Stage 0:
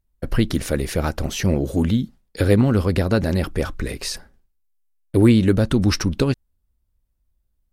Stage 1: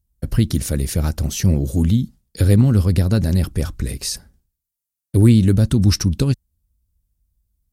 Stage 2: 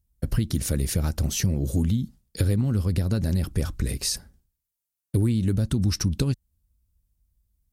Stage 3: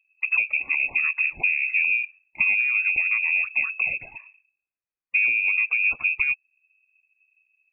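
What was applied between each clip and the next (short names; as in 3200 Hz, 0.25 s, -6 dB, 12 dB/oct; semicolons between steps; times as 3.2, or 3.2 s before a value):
HPF 43 Hz; tone controls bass +13 dB, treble +13 dB; gain -6.5 dB
compressor 6:1, threshold -18 dBFS, peak gain reduction 11 dB; gain -1.5 dB
inverted band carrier 2600 Hz; loudest bins only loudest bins 64; AAC 128 kbps 48000 Hz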